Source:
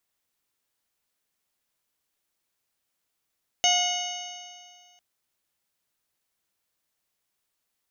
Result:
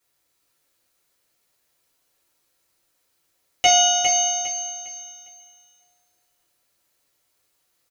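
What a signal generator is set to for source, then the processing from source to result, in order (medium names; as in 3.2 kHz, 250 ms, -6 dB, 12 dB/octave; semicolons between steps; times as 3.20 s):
stretched partials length 1.35 s, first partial 714 Hz, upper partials -17/-5.5/2.5/-8/-13.5/-10/0 dB, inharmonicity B 0.0036, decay 2.01 s, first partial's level -23 dB
rattle on loud lows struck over -42 dBFS, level -19 dBFS; on a send: feedback delay 405 ms, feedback 30%, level -5.5 dB; on the sum: two-slope reverb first 0.33 s, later 1.7 s, from -18 dB, DRR -8 dB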